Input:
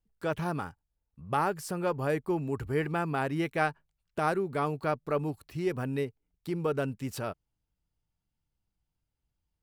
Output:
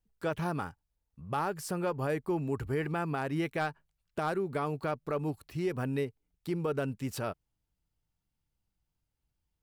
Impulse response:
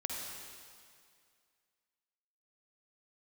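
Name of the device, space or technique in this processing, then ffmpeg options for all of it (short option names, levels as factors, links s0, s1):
clipper into limiter: -af "asoftclip=type=hard:threshold=0.112,alimiter=limit=0.0708:level=0:latency=1:release=117"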